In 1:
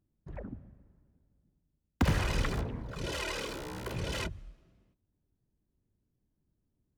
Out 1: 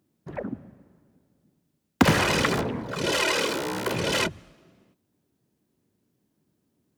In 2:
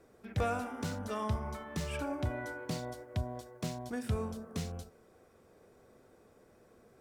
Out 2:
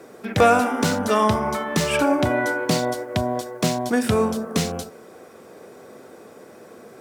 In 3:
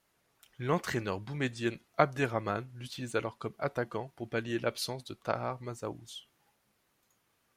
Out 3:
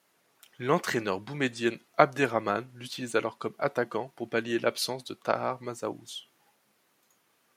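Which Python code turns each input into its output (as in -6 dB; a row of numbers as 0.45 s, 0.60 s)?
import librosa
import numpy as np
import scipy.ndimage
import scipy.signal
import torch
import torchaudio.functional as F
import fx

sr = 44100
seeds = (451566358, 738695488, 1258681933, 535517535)

y = scipy.signal.sosfilt(scipy.signal.butter(2, 190.0, 'highpass', fs=sr, output='sos'), x)
y = librosa.util.normalize(y) * 10.0 ** (-3 / 20.0)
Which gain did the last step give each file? +12.5 dB, +18.5 dB, +5.5 dB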